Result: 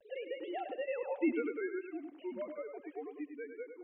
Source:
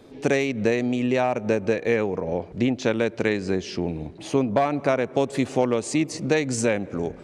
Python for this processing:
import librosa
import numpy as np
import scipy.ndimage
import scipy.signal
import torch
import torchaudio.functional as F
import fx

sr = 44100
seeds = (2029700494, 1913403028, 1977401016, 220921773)

p1 = fx.sine_speech(x, sr)
p2 = fx.doppler_pass(p1, sr, speed_mps=35, closest_m=4.9, pass_at_s=2.36)
p3 = fx.dynamic_eq(p2, sr, hz=490.0, q=1.6, threshold_db=-44.0, ratio=4.0, max_db=-4)
p4 = fx.rider(p3, sr, range_db=5, speed_s=0.5)
p5 = p3 + F.gain(torch.from_numpy(p4), -2.0).numpy()
p6 = fx.stretch_grains(p5, sr, factor=0.53, grain_ms=127.0)
p7 = fx.vibrato(p6, sr, rate_hz=0.39, depth_cents=25.0)
p8 = p7 + fx.echo_feedback(p7, sr, ms=100, feedback_pct=25, wet_db=-8.5, dry=0)
p9 = fx.band_squash(p8, sr, depth_pct=40)
y = F.gain(torch.from_numpy(p9), -3.0).numpy()